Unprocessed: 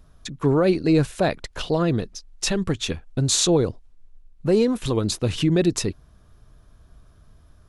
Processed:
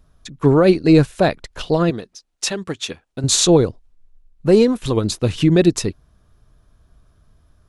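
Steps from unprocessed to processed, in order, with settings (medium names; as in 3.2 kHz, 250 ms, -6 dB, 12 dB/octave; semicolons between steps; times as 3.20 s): 1.90–3.24 s: high-pass 340 Hz 6 dB/octave; upward expansion 1.5:1, over -34 dBFS; trim +7 dB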